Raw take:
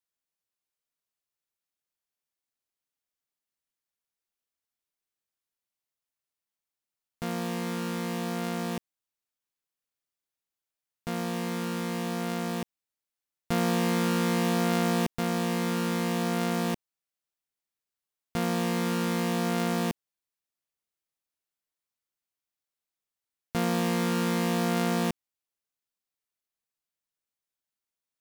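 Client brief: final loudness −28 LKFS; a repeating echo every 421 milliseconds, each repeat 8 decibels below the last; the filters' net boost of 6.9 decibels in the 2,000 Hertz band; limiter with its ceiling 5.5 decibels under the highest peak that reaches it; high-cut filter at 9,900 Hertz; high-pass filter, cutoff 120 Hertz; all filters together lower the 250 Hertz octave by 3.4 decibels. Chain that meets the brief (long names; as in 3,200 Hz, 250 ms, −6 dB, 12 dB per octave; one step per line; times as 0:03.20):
high-pass filter 120 Hz
low-pass filter 9,900 Hz
parametric band 250 Hz −4 dB
parametric band 2,000 Hz +8.5 dB
brickwall limiter −15.5 dBFS
repeating echo 421 ms, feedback 40%, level −8 dB
level +1.5 dB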